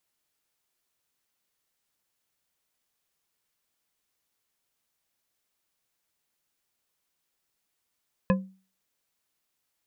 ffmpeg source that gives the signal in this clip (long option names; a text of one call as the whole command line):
ffmpeg -f lavfi -i "aevalsrc='0.141*pow(10,-3*t/0.37)*sin(2*PI*190*t)+0.0944*pow(10,-3*t/0.182)*sin(2*PI*523.8*t)+0.0631*pow(10,-3*t/0.114)*sin(2*PI*1026.8*t)+0.0422*pow(10,-3*t/0.08)*sin(2*PI*1697.3*t)+0.0282*pow(10,-3*t/0.06)*sin(2*PI*2534.6*t)':duration=0.89:sample_rate=44100" out.wav